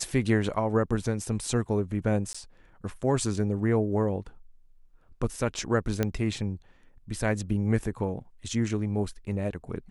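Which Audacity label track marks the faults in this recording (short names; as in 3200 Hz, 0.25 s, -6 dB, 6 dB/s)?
2.330000	2.350000	gap 15 ms
6.030000	6.030000	pop -12 dBFS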